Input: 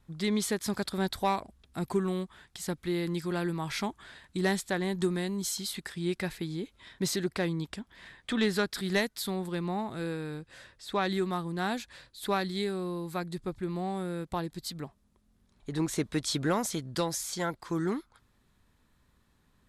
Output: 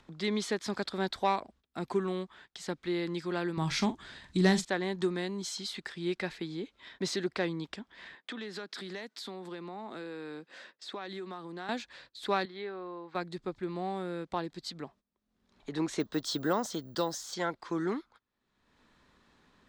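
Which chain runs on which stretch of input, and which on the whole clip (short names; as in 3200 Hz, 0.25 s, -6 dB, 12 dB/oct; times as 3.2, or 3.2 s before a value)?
3.57–4.65 tone controls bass +14 dB, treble +8 dB + doubler 43 ms -12 dB
8.15–11.69 HPF 180 Hz 24 dB/oct + compressor 10:1, threshold -35 dBFS + mismatched tape noise reduction decoder only
12.45–13.15 band-pass 1100 Hz, Q 0.66 + air absorption 130 m
16–17.34 bell 2300 Hz -13.5 dB 0.4 oct + careless resampling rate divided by 2×, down filtered, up zero stuff
whole clip: gate -54 dBFS, range -18 dB; three-band isolator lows -12 dB, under 210 Hz, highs -23 dB, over 6700 Hz; upward compressor, threshold -44 dBFS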